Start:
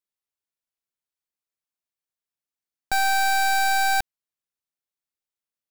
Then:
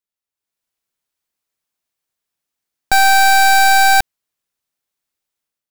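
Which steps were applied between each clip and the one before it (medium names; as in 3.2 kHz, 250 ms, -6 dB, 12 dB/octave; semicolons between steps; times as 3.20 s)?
level rider gain up to 10.5 dB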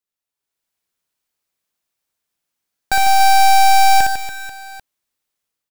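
peak limiter -13.5 dBFS, peak gain reduction 4 dB; on a send: reverse bouncing-ball echo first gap 60 ms, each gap 1.5×, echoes 5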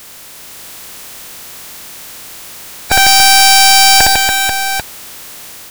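spectral peaks clipped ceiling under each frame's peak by 22 dB; power-law waveshaper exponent 0.35; trim -4.5 dB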